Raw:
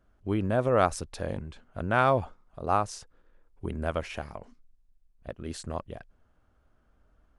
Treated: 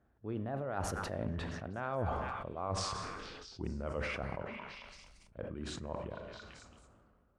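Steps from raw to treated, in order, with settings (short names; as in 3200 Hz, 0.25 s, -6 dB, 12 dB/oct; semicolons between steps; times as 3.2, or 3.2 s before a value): Doppler pass-by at 1.92, 31 m/s, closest 12 m; HPF 66 Hz 12 dB/oct; high shelf 7800 Hz -10.5 dB; reverse; compressor 8:1, threshold -48 dBFS, peak gain reduction 28 dB; reverse; high shelf 2600 Hz -10.5 dB; on a send: delay with a stepping band-pass 0.223 s, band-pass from 1500 Hz, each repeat 0.7 oct, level -7.5 dB; on the sum: Schroeder reverb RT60 0.74 s, combs from 29 ms, DRR 11.5 dB; sustainer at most 24 dB/s; gain +13 dB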